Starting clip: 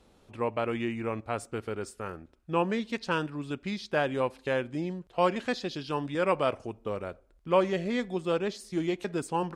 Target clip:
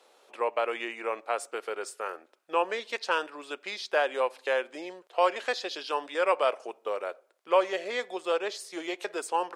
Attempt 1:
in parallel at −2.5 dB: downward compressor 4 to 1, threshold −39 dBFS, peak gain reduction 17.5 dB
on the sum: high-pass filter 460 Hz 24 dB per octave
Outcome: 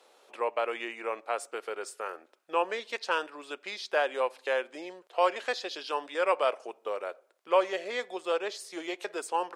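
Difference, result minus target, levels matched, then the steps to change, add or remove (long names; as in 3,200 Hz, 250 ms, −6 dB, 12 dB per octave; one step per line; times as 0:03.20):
downward compressor: peak gain reduction +7 dB
change: downward compressor 4 to 1, threshold −30 dBFS, peak gain reduction 10.5 dB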